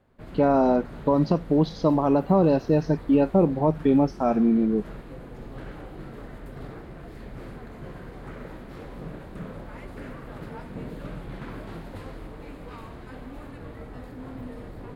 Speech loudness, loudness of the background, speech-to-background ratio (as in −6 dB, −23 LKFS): −22.0 LKFS, −41.0 LKFS, 19.0 dB